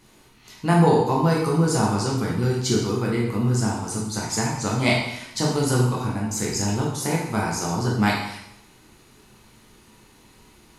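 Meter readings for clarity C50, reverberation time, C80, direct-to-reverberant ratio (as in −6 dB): 2.0 dB, 0.80 s, 5.5 dB, −4.0 dB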